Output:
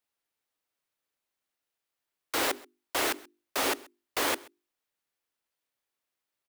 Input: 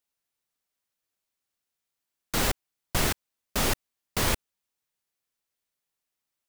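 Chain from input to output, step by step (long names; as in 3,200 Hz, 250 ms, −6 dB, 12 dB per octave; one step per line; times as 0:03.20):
Butterworth high-pass 260 Hz 96 dB per octave
mains-hum notches 50/100/150/200/250/300/350/400 Hz
in parallel at −6 dB: sample-rate reduction 9,600 Hz
on the sum: single-tap delay 131 ms −23.5 dB
level −3 dB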